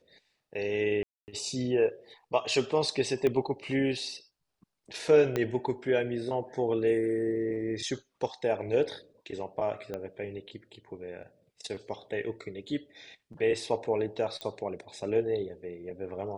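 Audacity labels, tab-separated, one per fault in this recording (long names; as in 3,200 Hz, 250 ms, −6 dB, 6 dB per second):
1.030000	1.280000	drop-out 249 ms
3.270000	3.270000	click −17 dBFS
5.360000	5.360000	click −15 dBFS
9.940000	9.940000	click −23 dBFS
14.410000	14.410000	click −22 dBFS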